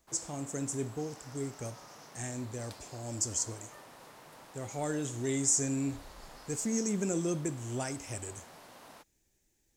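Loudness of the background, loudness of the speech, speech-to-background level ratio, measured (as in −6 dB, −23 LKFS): −52.0 LKFS, −34.5 LKFS, 17.5 dB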